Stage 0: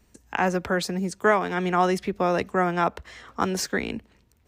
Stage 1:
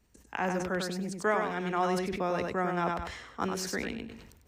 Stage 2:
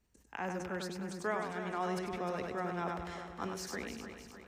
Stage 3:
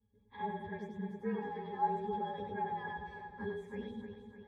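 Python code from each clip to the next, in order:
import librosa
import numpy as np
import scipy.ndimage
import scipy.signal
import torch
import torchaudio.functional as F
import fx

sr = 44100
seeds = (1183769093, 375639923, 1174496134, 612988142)

y1 = fx.echo_feedback(x, sr, ms=98, feedback_pct=17, wet_db=-5.5)
y1 = fx.sustainer(y1, sr, db_per_s=52.0)
y1 = y1 * 10.0 ** (-8.5 / 20.0)
y2 = fx.echo_feedback(y1, sr, ms=305, feedback_pct=56, wet_db=-9.5)
y2 = y2 * 10.0 ** (-7.5 / 20.0)
y3 = fx.partial_stretch(y2, sr, pct=113)
y3 = fx.octave_resonator(y3, sr, note='G#', decay_s=0.12)
y3 = y3 * 10.0 ** (12.0 / 20.0)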